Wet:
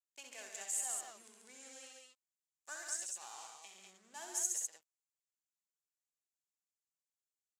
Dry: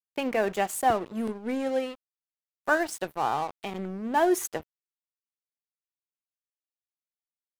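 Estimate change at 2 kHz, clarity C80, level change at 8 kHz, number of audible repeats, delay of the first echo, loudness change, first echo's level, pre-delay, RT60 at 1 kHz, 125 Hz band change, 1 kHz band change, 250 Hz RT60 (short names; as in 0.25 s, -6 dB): -19.5 dB, none, +1.5 dB, 3, 64 ms, -11.5 dB, -5.0 dB, none, none, under -35 dB, -26.0 dB, none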